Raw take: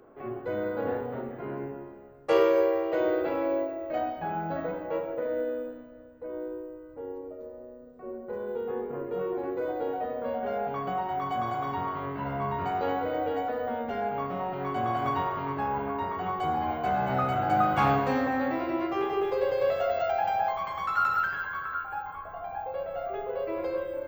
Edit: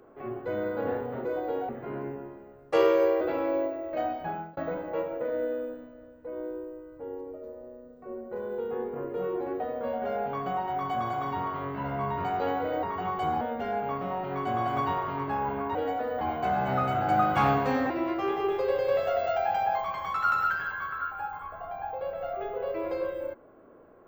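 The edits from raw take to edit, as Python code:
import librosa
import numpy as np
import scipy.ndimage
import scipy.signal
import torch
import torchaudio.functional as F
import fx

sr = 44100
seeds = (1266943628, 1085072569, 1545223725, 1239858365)

y = fx.edit(x, sr, fx.cut(start_s=2.77, length_s=0.41),
    fx.fade_out_span(start_s=4.24, length_s=0.3),
    fx.move(start_s=9.57, length_s=0.44, to_s=1.25),
    fx.swap(start_s=13.24, length_s=0.46, other_s=16.04, other_length_s=0.58),
    fx.cut(start_s=18.31, length_s=0.32), tone=tone)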